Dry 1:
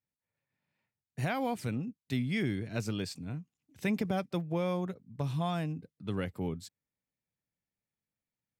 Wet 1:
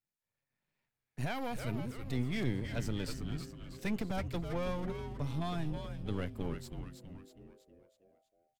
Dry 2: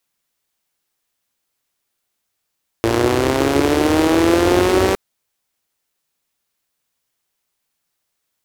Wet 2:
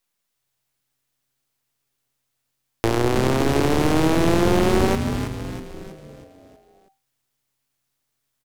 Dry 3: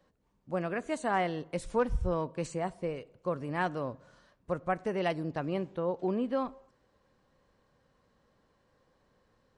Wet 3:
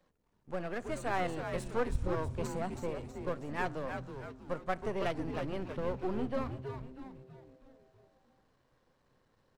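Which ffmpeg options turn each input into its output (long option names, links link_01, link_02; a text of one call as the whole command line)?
ffmpeg -i in.wav -filter_complex "[0:a]aeval=exprs='if(lt(val(0),0),0.251*val(0),val(0))':channel_layout=same,acrossover=split=440[link_01][link_02];[link_02]acompressor=threshold=-22dB:ratio=4[link_03];[link_01][link_03]amix=inputs=2:normalize=0,asplit=7[link_04][link_05][link_06][link_07][link_08][link_09][link_10];[link_05]adelay=322,afreqshift=-130,volume=-6.5dB[link_11];[link_06]adelay=644,afreqshift=-260,volume=-12.7dB[link_12];[link_07]adelay=966,afreqshift=-390,volume=-18.9dB[link_13];[link_08]adelay=1288,afreqshift=-520,volume=-25.1dB[link_14];[link_09]adelay=1610,afreqshift=-650,volume=-31.3dB[link_15];[link_10]adelay=1932,afreqshift=-780,volume=-37.5dB[link_16];[link_04][link_11][link_12][link_13][link_14][link_15][link_16]amix=inputs=7:normalize=0" out.wav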